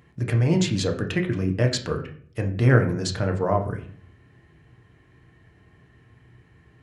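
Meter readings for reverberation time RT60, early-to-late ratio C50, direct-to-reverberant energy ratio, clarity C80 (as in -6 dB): 0.55 s, 10.5 dB, 3.0 dB, 14.5 dB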